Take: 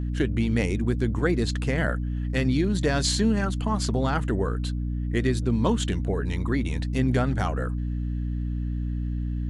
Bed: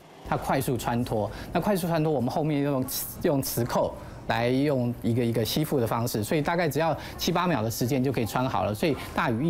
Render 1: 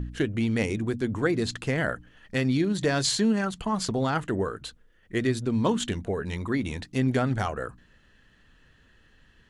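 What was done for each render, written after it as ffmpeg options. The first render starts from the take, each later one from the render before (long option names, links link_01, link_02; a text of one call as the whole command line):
ffmpeg -i in.wav -af "bandreject=frequency=60:width_type=h:width=4,bandreject=frequency=120:width_type=h:width=4,bandreject=frequency=180:width_type=h:width=4,bandreject=frequency=240:width_type=h:width=4,bandreject=frequency=300:width_type=h:width=4" out.wav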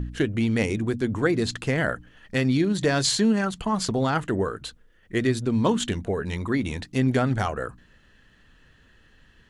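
ffmpeg -i in.wav -af "volume=2.5dB" out.wav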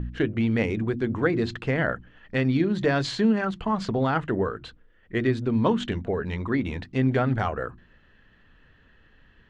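ffmpeg -i in.wav -af "lowpass=2900,bandreject=frequency=50:width_type=h:width=6,bandreject=frequency=100:width_type=h:width=6,bandreject=frequency=150:width_type=h:width=6,bandreject=frequency=200:width_type=h:width=6,bandreject=frequency=250:width_type=h:width=6,bandreject=frequency=300:width_type=h:width=6,bandreject=frequency=350:width_type=h:width=6" out.wav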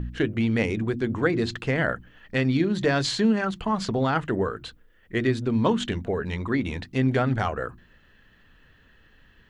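ffmpeg -i in.wav -af "aemphasis=mode=production:type=50kf" out.wav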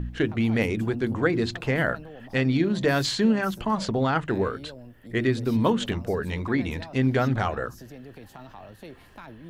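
ffmpeg -i in.wav -i bed.wav -filter_complex "[1:a]volume=-18.5dB[link_01];[0:a][link_01]amix=inputs=2:normalize=0" out.wav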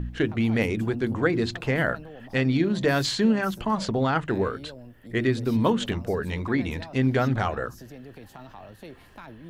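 ffmpeg -i in.wav -af anull out.wav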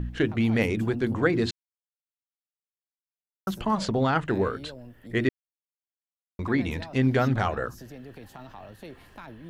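ffmpeg -i in.wav -filter_complex "[0:a]asplit=5[link_01][link_02][link_03][link_04][link_05];[link_01]atrim=end=1.51,asetpts=PTS-STARTPTS,afade=type=out:start_time=1.506:duration=0.004:curve=hsin[link_06];[link_02]atrim=start=1.51:end=3.47,asetpts=PTS-STARTPTS,volume=0[link_07];[link_03]atrim=start=3.47:end=5.29,asetpts=PTS-STARTPTS,afade=type=in:duration=0.004:curve=hsin,afade=type=out:start_time=1.816:duration=0.004:curve=hsin[link_08];[link_04]atrim=start=5.29:end=6.39,asetpts=PTS-STARTPTS,volume=0[link_09];[link_05]atrim=start=6.39,asetpts=PTS-STARTPTS,afade=type=in:duration=0.004:curve=hsin[link_10];[link_06][link_07][link_08][link_09][link_10]concat=n=5:v=0:a=1" out.wav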